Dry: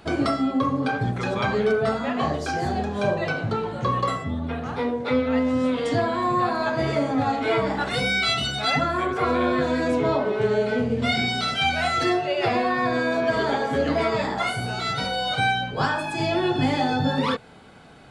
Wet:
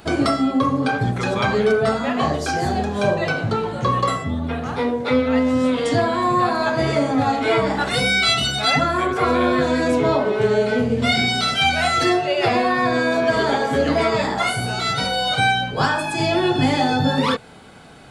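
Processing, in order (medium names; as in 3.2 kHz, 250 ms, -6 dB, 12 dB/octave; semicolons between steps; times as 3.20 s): treble shelf 7.1 kHz +8.5 dB; trim +4 dB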